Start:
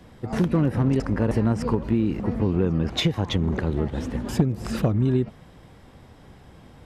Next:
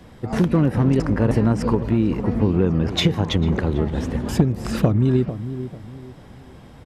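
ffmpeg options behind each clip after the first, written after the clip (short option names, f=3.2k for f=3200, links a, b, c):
-filter_complex "[0:a]asplit=2[a][b];[b]adelay=446,lowpass=f=1.1k:p=1,volume=-11dB,asplit=2[c][d];[d]adelay=446,lowpass=f=1.1k:p=1,volume=0.34,asplit=2[e][f];[f]adelay=446,lowpass=f=1.1k:p=1,volume=0.34,asplit=2[g][h];[h]adelay=446,lowpass=f=1.1k:p=1,volume=0.34[i];[a][c][e][g][i]amix=inputs=5:normalize=0,volume=3.5dB"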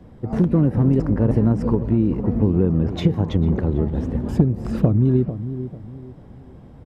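-af "tiltshelf=f=1.1k:g=8,volume=-6.5dB"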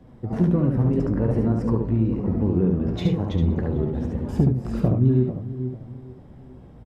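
-af "flanger=delay=7.7:depth=9.5:regen=53:speed=0.52:shape=sinusoidal,aecho=1:1:71:0.631"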